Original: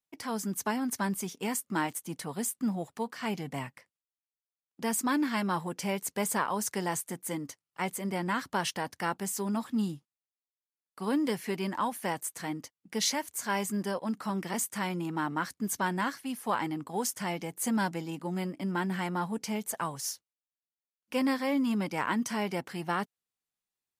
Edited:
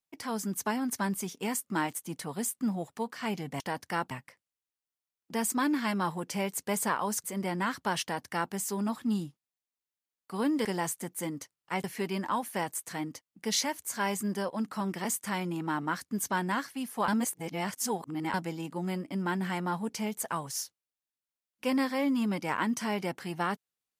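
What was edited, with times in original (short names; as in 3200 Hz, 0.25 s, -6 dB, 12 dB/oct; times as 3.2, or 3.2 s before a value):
6.73–7.92 move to 11.33
8.7–9.21 copy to 3.6
16.57–17.83 reverse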